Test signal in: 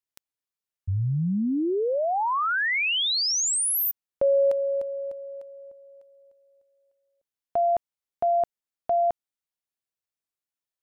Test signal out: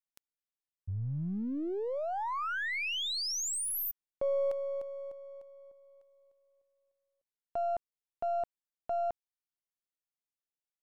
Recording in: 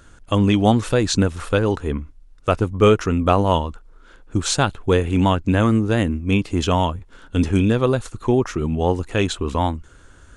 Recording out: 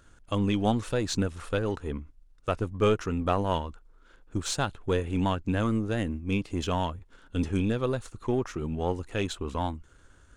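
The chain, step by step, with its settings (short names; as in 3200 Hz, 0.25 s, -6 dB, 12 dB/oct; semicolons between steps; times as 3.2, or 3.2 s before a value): half-wave gain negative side -3 dB; gain -8.5 dB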